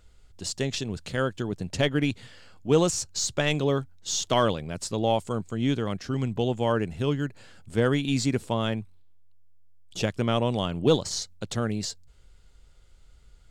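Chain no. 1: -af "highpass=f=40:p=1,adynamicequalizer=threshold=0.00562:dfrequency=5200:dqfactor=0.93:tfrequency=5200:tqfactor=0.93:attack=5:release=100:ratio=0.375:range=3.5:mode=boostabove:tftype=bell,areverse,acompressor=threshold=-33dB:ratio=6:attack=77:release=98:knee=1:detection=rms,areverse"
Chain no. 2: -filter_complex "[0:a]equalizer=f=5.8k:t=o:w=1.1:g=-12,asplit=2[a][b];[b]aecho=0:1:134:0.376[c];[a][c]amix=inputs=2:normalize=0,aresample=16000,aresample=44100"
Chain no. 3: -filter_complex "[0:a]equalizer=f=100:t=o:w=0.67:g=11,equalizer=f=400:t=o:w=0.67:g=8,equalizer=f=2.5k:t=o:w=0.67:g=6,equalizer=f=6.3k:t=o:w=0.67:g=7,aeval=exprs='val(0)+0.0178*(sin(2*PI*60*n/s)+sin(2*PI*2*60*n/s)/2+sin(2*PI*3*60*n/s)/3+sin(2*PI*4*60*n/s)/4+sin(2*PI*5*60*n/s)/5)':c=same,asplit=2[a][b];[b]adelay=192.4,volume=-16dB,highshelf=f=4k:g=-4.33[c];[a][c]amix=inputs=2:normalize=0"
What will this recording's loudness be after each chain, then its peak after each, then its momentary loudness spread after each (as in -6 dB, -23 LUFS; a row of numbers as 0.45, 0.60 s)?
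-33.0, -27.5, -22.5 LUFS; -16.0, -10.0, -5.0 dBFS; 7, 12, 20 LU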